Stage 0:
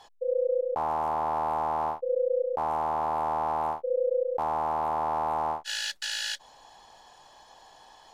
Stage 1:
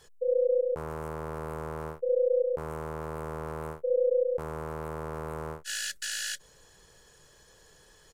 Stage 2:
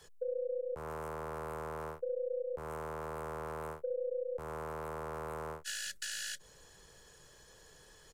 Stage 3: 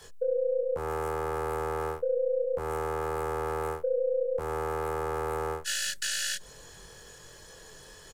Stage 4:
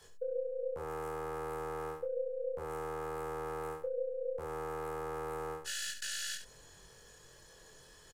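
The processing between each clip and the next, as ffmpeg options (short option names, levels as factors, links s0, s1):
-af "firequalizer=gain_entry='entry(170,0);entry(250,-12);entry(440,-1);entry(770,-28);entry(1400,-8);entry(2500,-11);entry(3600,-14);entry(8000,-1)':delay=0.05:min_phase=1,volume=2.37"
-filter_complex "[0:a]acrossover=split=97|410[s0][s1][s2];[s0]acompressor=threshold=0.00251:ratio=4[s3];[s1]acompressor=threshold=0.00355:ratio=4[s4];[s2]acompressor=threshold=0.0141:ratio=4[s5];[s3][s4][s5]amix=inputs=3:normalize=0,volume=0.891"
-filter_complex "[0:a]asplit=2[s0][s1];[s1]adelay=23,volume=0.708[s2];[s0][s2]amix=inputs=2:normalize=0,volume=2.37"
-af "aecho=1:1:70:0.355,volume=0.376"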